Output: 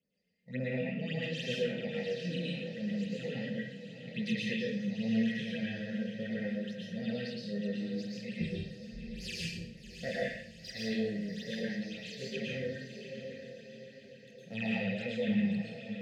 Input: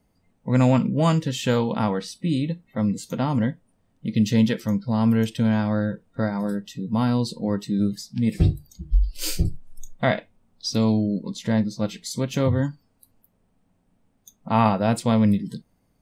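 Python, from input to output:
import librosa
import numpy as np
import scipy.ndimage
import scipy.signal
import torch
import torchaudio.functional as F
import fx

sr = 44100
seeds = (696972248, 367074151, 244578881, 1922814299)

y = fx.dead_time(x, sr, dead_ms=0.056)
y = fx.vowel_filter(y, sr, vowel='e')
y = fx.chorus_voices(y, sr, voices=4, hz=0.23, base_ms=26, depth_ms=3.6, mix_pct=45)
y = fx.env_lowpass_down(y, sr, base_hz=2300.0, full_db=-30.5)
y = fx.peak_eq(y, sr, hz=540.0, db=-11.0, octaves=0.55)
y = fx.echo_diffused(y, sr, ms=714, feedback_pct=51, wet_db=-9)
y = fx.phaser_stages(y, sr, stages=8, low_hz=390.0, high_hz=3100.0, hz=3.6, feedback_pct=45)
y = fx.curve_eq(y, sr, hz=(100.0, 170.0, 310.0, 460.0, 670.0, 1000.0, 1800.0, 3200.0), db=(0, 11, -7, 2, -3, -20, 3, 11))
y = fx.rev_plate(y, sr, seeds[0], rt60_s=0.58, hf_ratio=0.95, predelay_ms=100, drr_db=-4.5)
y = F.gain(torch.from_numpy(y), 3.5).numpy()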